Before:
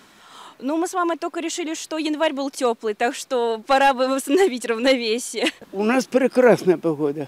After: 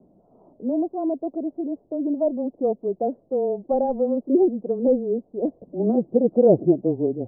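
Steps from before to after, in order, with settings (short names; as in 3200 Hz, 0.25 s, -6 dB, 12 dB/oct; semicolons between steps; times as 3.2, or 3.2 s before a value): Wiener smoothing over 15 samples; frequency shift -16 Hz; elliptic low-pass 660 Hz, stop band 80 dB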